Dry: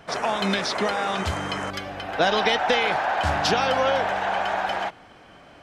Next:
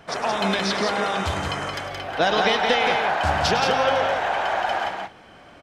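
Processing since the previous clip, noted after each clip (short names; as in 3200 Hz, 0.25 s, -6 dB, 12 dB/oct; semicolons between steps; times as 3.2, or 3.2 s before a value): tapped delay 0.104/0.173/0.204 s -12/-4.5/-16.5 dB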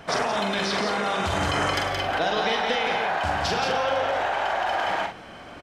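in parallel at +1.5 dB: negative-ratio compressor -28 dBFS, ratio -0.5; on the sum: doubler 44 ms -5.5 dB; gain -6.5 dB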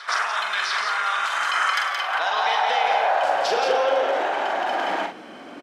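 reverse echo 0.701 s -17.5 dB; high-pass sweep 1300 Hz -> 270 Hz, 1.82–4.59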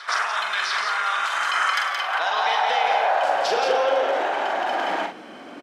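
HPF 89 Hz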